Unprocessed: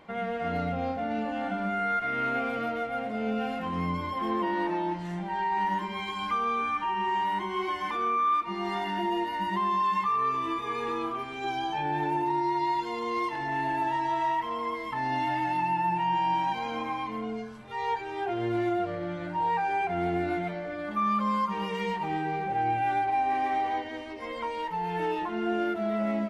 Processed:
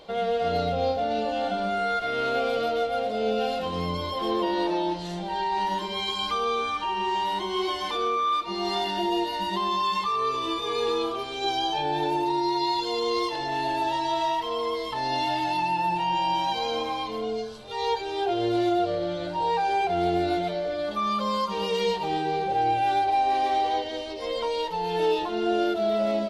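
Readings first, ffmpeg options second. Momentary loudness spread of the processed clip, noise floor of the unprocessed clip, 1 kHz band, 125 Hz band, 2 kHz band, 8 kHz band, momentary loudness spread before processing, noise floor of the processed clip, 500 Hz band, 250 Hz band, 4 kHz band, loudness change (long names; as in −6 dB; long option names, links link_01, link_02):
5 LU, −37 dBFS, +2.0 dB, 0.0 dB, 0.0 dB, can't be measured, 6 LU, −33 dBFS, +7.0 dB, +1.5 dB, +11.5 dB, +3.0 dB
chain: -af "equalizer=frequency=125:width_type=o:width=1:gain=-7,equalizer=frequency=250:width_type=o:width=1:gain=-10,equalizer=frequency=500:width_type=o:width=1:gain=6,equalizer=frequency=1000:width_type=o:width=1:gain=-6,equalizer=frequency=2000:width_type=o:width=1:gain=-12,equalizer=frequency=4000:width_type=o:width=1:gain=12,volume=7.5dB"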